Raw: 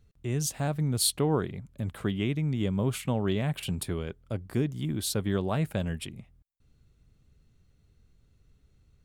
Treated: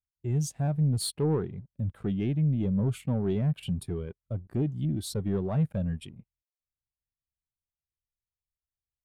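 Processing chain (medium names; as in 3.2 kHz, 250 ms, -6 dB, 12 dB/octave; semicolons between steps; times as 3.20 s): waveshaping leveller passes 3; spectral contrast expander 1.5:1; trim -7 dB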